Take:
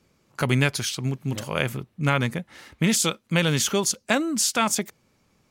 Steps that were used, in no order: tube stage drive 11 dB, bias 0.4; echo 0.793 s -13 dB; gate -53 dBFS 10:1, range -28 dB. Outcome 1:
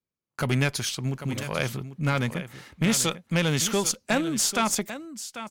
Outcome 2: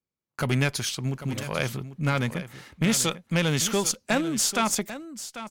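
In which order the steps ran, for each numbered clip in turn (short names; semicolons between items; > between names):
gate > echo > tube stage; tube stage > gate > echo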